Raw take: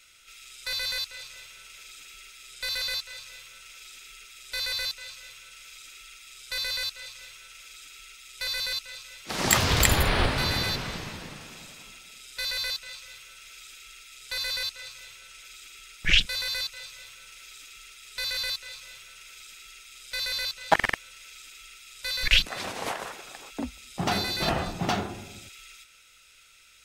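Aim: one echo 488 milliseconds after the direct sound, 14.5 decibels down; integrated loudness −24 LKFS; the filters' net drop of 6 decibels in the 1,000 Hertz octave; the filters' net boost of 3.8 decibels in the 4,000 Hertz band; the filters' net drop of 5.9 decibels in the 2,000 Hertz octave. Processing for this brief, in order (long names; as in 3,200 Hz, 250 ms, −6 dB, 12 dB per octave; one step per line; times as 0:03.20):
parametric band 1,000 Hz −6.5 dB
parametric band 2,000 Hz −8.5 dB
parametric band 4,000 Hz +7 dB
single-tap delay 488 ms −14.5 dB
level +2.5 dB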